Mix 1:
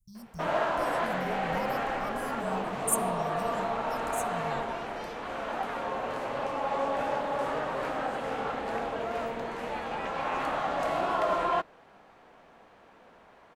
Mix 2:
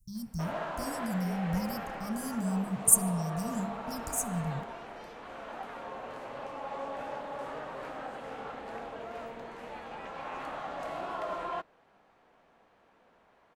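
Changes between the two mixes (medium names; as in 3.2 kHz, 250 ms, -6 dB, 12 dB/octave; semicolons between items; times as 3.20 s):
speech +7.5 dB; background -8.5 dB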